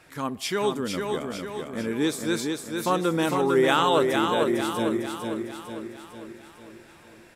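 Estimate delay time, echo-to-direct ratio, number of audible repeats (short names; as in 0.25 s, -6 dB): 0.452 s, -3.0 dB, 6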